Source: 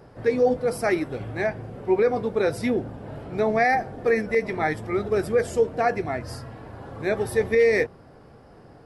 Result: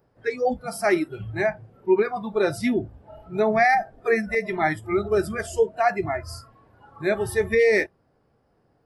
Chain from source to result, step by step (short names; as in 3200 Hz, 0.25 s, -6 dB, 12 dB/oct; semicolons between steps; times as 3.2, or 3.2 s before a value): spectral noise reduction 19 dB; gain +2.5 dB